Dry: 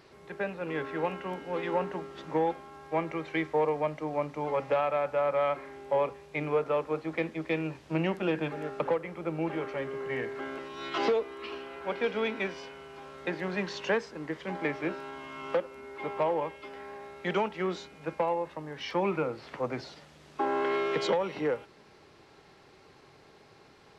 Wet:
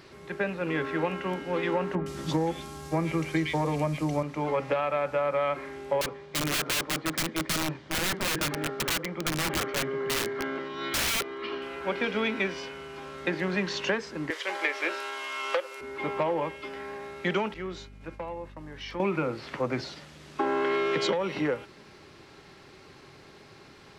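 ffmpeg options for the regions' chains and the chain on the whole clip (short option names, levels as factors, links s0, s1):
-filter_complex "[0:a]asettb=1/sr,asplit=3[s0][s1][s2];[s0]atrim=end=1.954[s3];[s1]atrim=start=1.95:end=4.23,asetpts=PTS-STARTPTS,afade=t=in:d=0.004:c=qsin,afade=t=out:st=2.276:d=0.004:c=qsin,bass=f=250:g=9,treble=f=4000:g=14,acrossover=split=2100[s4][s5];[s5]adelay=110[s6];[s4][s6]amix=inputs=2:normalize=0,atrim=end_sample=100548[s7];[s2]atrim=start=4.226[s8];[s3][s7]acrossfade=d=0.004:c1=hsin:c2=qsin[s9];[s9][s8]acrossfade=d=0.004:c1=qsin:c2=hsin,asettb=1/sr,asplit=3[s10][s11][s12];[s10]atrim=end=6.014[s13];[s11]atrim=start=6.01:end=11.62,asetpts=PTS-STARTPTS,afade=t=in:d=0.004:c=qsin,afade=t=out:st=5.606:d=0.004:c=qsin,highpass=100,lowpass=4000,bandreject=f=2600:w=7.7,aeval=exprs='(mod(25.1*val(0)+1,2)-1)/25.1':c=same[s14];[s12]atrim=start=11.616[s15];[s13][s14]acrossfade=d=0.004:c1=hsin:c2=qsin[s16];[s16][s15]acrossfade=d=0.004:c1=qsin:c2=hsin,asettb=1/sr,asplit=3[s17][s18][s19];[s17]atrim=end=14.304[s20];[s18]atrim=start=14.3:end=15.81,asetpts=PTS-STARTPTS,afade=t=in:d=0.004:c=qsin,afade=t=out:st=1.506:d=0.004:c=qsin,highpass=f=430:w=0.5412,highpass=f=430:w=1.3066,highshelf=f=2300:g=9.5[s21];[s19]atrim=start=15.806[s22];[s20][s21]acrossfade=d=0.004:c1=hsin:c2=qsin[s23];[s23][s22]acrossfade=d=0.004:c1=qsin:c2=hsin,asettb=1/sr,asplit=3[s24][s25][s26];[s24]atrim=end=17.544[s27];[s25]atrim=start=17.54:end=19,asetpts=PTS-STARTPTS,afade=t=in:d=0.004:c=qsin,afade=t=out:st=1.456:d=0.004:c=qsin,agate=range=0.0224:threshold=0.00631:ratio=3:release=100:detection=peak,acompressor=threshold=0.00126:ratio=1.5:attack=3.2:release=140:knee=1:detection=peak,aeval=exprs='val(0)+0.002*(sin(2*PI*50*n/s)+sin(2*PI*2*50*n/s)/2+sin(2*PI*3*50*n/s)/3+sin(2*PI*4*50*n/s)/4+sin(2*PI*5*50*n/s)/5)':c=same[s28];[s26]atrim=start=18.996[s29];[s27][s28]acrossfade=d=0.004:c1=hsin:c2=qsin[s30];[s30][s29]acrossfade=d=0.004:c1=qsin:c2=hsin,equalizer=f=750:w=1.4:g=-5,bandreject=f=460:w=12,acompressor=threshold=0.0316:ratio=6,volume=2.24"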